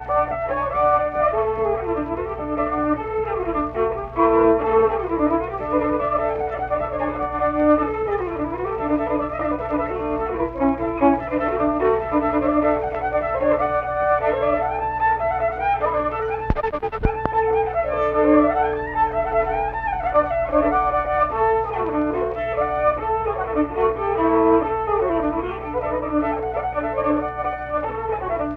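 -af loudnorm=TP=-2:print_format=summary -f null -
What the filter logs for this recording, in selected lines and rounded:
Input Integrated:    -21.4 LUFS
Input True Peak:      -2.4 dBTP
Input LRA:             3.3 LU
Input Threshold:     -31.4 LUFS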